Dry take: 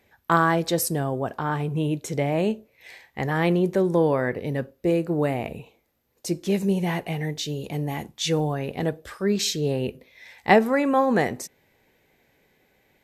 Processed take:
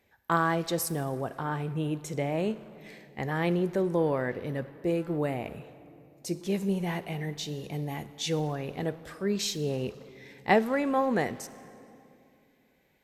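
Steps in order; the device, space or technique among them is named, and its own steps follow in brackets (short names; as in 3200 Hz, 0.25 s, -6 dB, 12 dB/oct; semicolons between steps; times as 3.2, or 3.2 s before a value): saturated reverb return (on a send at -11 dB: reverb RT60 2.2 s, pre-delay 36 ms + soft clip -27 dBFS, distortion -7 dB); on the sum: gain -6 dB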